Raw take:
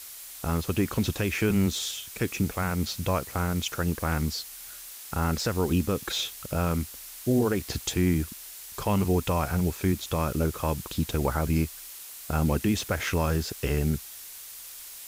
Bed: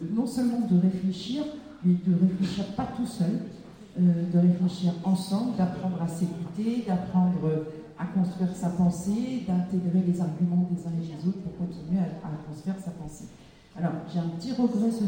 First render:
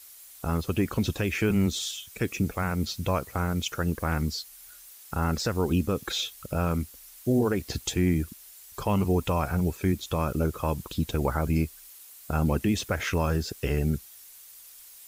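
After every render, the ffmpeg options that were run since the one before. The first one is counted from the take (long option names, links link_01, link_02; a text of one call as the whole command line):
ffmpeg -i in.wav -af "afftdn=noise_reduction=9:noise_floor=-43" out.wav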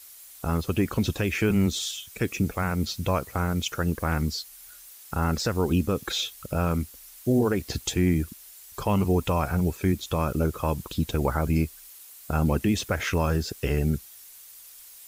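ffmpeg -i in.wav -af "volume=1.5dB" out.wav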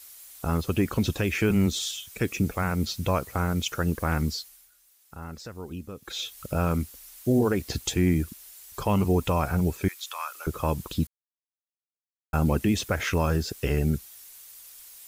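ffmpeg -i in.wav -filter_complex "[0:a]asettb=1/sr,asplit=3[link_01][link_02][link_03];[link_01]atrim=end=9.884[link_04];[link_02]atrim=start=9.88:end=10.47,asetpts=PTS-STARTPTS,afade=type=in:duration=0.004:curve=qsin,afade=type=out:start_time=0.586:duration=0.004:curve=qsin,highpass=frequency=1000:width=0.5412,highpass=frequency=1000:width=1.3066[link_05];[link_03]atrim=start=10.466[link_06];[link_04][link_05]acrossfade=duration=0.004:curve1=hsin:curve2=qsin[link_07];[link_07][link_06]acrossfade=duration=0.004:curve1=qsin:curve2=hsin,asplit=5[link_08][link_09][link_10][link_11][link_12];[link_08]atrim=end=4.7,asetpts=PTS-STARTPTS,afade=type=out:start_time=4.31:duration=0.39:silence=0.199526[link_13];[link_09]atrim=start=4.7:end=6.01,asetpts=PTS-STARTPTS,volume=-14dB[link_14];[link_10]atrim=start=6.01:end=11.07,asetpts=PTS-STARTPTS,afade=type=in:duration=0.39:silence=0.199526,afade=type=out:start_time=5.056:duration=0.004:curve=hsin[link_15];[link_11]atrim=start=11.07:end=12.33,asetpts=PTS-STARTPTS,volume=0[link_16];[link_12]atrim=start=12.33,asetpts=PTS-STARTPTS,afade=type=in:duration=0.004:curve=hsin[link_17];[link_13][link_14][link_15][link_16][link_17]concat=n=5:v=0:a=1" out.wav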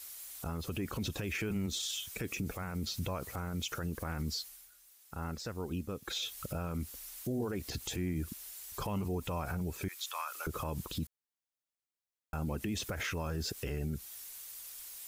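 ffmpeg -i in.wav -af "acompressor=threshold=-30dB:ratio=1.5,alimiter=level_in=3.5dB:limit=-24dB:level=0:latency=1:release=66,volume=-3.5dB" out.wav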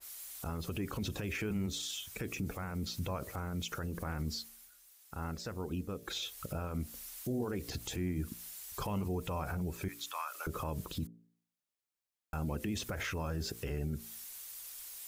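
ffmpeg -i in.wav -af "bandreject=frequency=57.02:width_type=h:width=4,bandreject=frequency=114.04:width_type=h:width=4,bandreject=frequency=171.06:width_type=h:width=4,bandreject=frequency=228.08:width_type=h:width=4,bandreject=frequency=285.1:width_type=h:width=4,bandreject=frequency=342.12:width_type=h:width=4,bandreject=frequency=399.14:width_type=h:width=4,bandreject=frequency=456.16:width_type=h:width=4,bandreject=frequency=513.18:width_type=h:width=4,bandreject=frequency=570.2:width_type=h:width=4,bandreject=frequency=627.22:width_type=h:width=4,bandreject=frequency=684.24:width_type=h:width=4,adynamicequalizer=threshold=0.002:dfrequency=1900:dqfactor=0.7:tfrequency=1900:tqfactor=0.7:attack=5:release=100:ratio=0.375:range=1.5:mode=cutabove:tftype=highshelf" out.wav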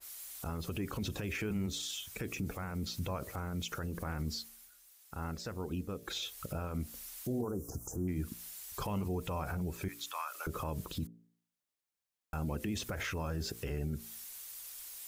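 ffmpeg -i in.wav -filter_complex "[0:a]asplit=3[link_01][link_02][link_03];[link_01]afade=type=out:start_time=7.41:duration=0.02[link_04];[link_02]asuperstop=centerf=2800:order=12:qfactor=0.64,afade=type=in:start_time=7.41:duration=0.02,afade=type=out:start_time=8.07:duration=0.02[link_05];[link_03]afade=type=in:start_time=8.07:duration=0.02[link_06];[link_04][link_05][link_06]amix=inputs=3:normalize=0" out.wav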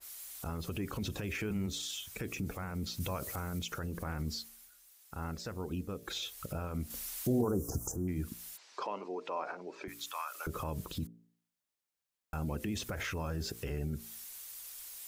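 ffmpeg -i in.wav -filter_complex "[0:a]asettb=1/sr,asplit=3[link_01][link_02][link_03];[link_01]atrim=end=3.004[link_04];[link_02]atrim=start=3:end=3.59,asetpts=PTS-STARTPTS,afade=type=in:duration=0.004:curve=qsin,afade=type=out:start_time=0.586:duration=0.004:curve=qsin,highshelf=frequency=3500:gain=9.5[link_05];[link_03]atrim=start=3.586[link_06];[link_04][link_05]acrossfade=duration=0.004:curve1=hsin:curve2=qsin[link_07];[link_07][link_06]acrossfade=duration=0.004:curve1=qsin:curve2=hsin,asettb=1/sr,asplit=3[link_08][link_09][link_10];[link_08]atrim=end=6.904[link_11];[link_09]atrim=start=6.9:end=7.92,asetpts=PTS-STARTPTS,afade=type=in:duration=0.004:curve=qsin,afade=type=out:start_time=1.016:duration=0.004:curve=qsin,acontrast=39[link_12];[link_10]atrim=start=7.916[link_13];[link_11][link_12]acrossfade=duration=0.004:curve1=hsin:curve2=qsin[link_14];[link_14][link_13]acrossfade=duration=0.004:curve1=qsin:curve2=hsin,asplit=3[link_15][link_16][link_17];[link_15]afade=type=out:start_time=8.56:duration=0.02[link_18];[link_16]highpass=frequency=310:width=0.5412,highpass=frequency=310:width=1.3066,equalizer=frequency=610:width_type=q:width=4:gain=3,equalizer=frequency=1000:width_type=q:width=4:gain=4,equalizer=frequency=3300:width_type=q:width=4:gain=-4,lowpass=frequency=5200:width=0.5412,lowpass=frequency=5200:width=1.3066,afade=type=in:start_time=8.56:duration=0.02,afade=type=out:start_time=9.87:duration=0.02[link_19];[link_17]afade=type=in:start_time=9.87:duration=0.02[link_20];[link_18][link_19][link_20]amix=inputs=3:normalize=0" out.wav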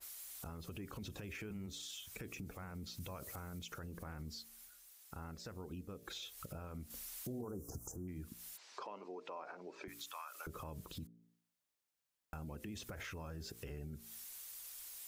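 ffmpeg -i in.wav -af "acompressor=threshold=-49dB:ratio=2.5" out.wav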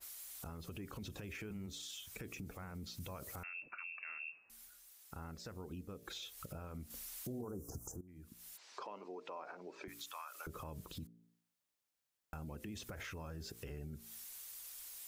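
ffmpeg -i in.wav -filter_complex "[0:a]asettb=1/sr,asplit=3[link_01][link_02][link_03];[link_01]atrim=end=3.434[link_04];[link_02]atrim=start=3.43:end=4.5,asetpts=PTS-STARTPTS,afade=type=in:duration=0.004:curve=qsin,afade=type=out:start_time=1.066:duration=0.004:curve=qsin,lowpass=frequency=2400:width_type=q:width=0.5098,lowpass=frequency=2400:width_type=q:width=0.6013,lowpass=frequency=2400:width_type=q:width=0.9,lowpass=frequency=2400:width_type=q:width=2.563,afreqshift=-2800[link_05];[link_03]atrim=start=4.496[link_06];[link_04][link_05]acrossfade=duration=0.004:curve1=hsin:curve2=qsin[link_07];[link_07][link_06]acrossfade=duration=0.004:curve1=qsin:curve2=hsin,asplit=2[link_08][link_09];[link_08]atrim=end=8.01,asetpts=PTS-STARTPTS,afade=type=out:start_time=8.006:duration=0.004:curve=hsin:silence=0.141254[link_10];[link_09]atrim=start=8.01,asetpts=PTS-STARTPTS,afade=type=in:duration=0.68:silence=0.141254[link_11];[link_10][link_11]concat=n=2:v=0:a=1" out.wav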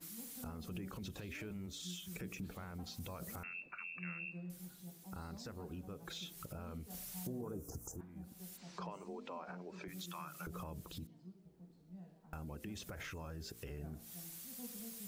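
ffmpeg -i in.wav -i bed.wav -filter_complex "[1:a]volume=-27dB[link_01];[0:a][link_01]amix=inputs=2:normalize=0" out.wav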